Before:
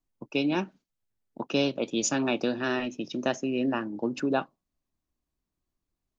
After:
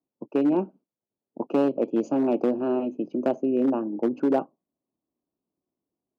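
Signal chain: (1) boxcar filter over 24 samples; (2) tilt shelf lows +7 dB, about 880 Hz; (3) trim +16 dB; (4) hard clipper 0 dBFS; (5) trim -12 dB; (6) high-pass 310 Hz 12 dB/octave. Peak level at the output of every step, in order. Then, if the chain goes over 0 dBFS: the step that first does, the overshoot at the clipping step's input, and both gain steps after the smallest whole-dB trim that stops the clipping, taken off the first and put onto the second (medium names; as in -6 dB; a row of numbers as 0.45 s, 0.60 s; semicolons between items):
-16.0 dBFS, -11.0 dBFS, +5.0 dBFS, 0.0 dBFS, -12.0 dBFS, -11.0 dBFS; step 3, 5.0 dB; step 3 +11 dB, step 5 -7 dB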